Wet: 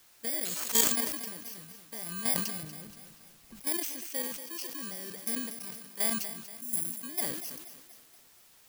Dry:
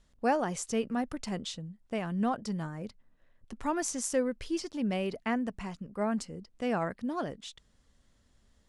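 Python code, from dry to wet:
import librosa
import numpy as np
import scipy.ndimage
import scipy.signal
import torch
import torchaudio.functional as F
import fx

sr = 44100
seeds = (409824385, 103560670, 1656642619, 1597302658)

y = fx.bit_reversed(x, sr, seeds[0], block=32)
y = fx.highpass(y, sr, hz=80.0, slope=6)
y = fx.hum_notches(y, sr, base_hz=50, count=4)
y = fx.riaa(y, sr, side='playback', at=(2.63, 3.6))
y = fx.cheby1_bandstop(y, sr, low_hz=340.0, high_hz=6600.0, order=4, at=(6.26, 7.03))
y = fx.tilt_eq(y, sr, slope=2.5)
y = fx.level_steps(y, sr, step_db=12)
y = fx.rotary_switch(y, sr, hz=0.8, then_hz=5.0, switch_at_s=6.26)
y = fx.quant_dither(y, sr, seeds[1], bits=10, dither='triangular')
y = fx.echo_feedback(y, sr, ms=238, feedback_pct=52, wet_db=-12)
y = fx.resample_bad(y, sr, factor=3, down='none', up='zero_stuff', at=(0.45, 0.92))
y = fx.sustainer(y, sr, db_per_s=52.0)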